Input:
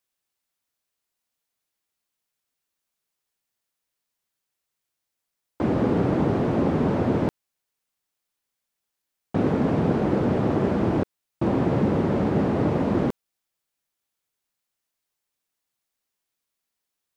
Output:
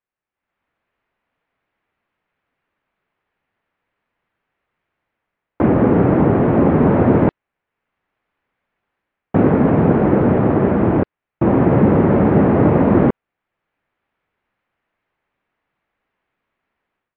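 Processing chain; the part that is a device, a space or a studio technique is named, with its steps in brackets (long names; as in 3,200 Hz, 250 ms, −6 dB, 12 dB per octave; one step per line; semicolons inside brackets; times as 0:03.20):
action camera in a waterproof case (low-pass filter 2,300 Hz 24 dB per octave; automatic gain control gain up to 16.5 dB; level −1 dB; AAC 96 kbit/s 48,000 Hz)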